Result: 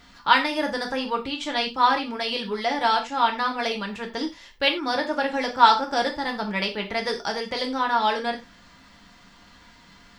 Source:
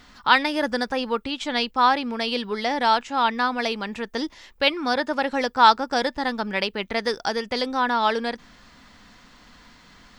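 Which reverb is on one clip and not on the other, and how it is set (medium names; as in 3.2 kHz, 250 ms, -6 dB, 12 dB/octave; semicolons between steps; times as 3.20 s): gated-style reverb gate 120 ms falling, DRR 2 dB; trim -3 dB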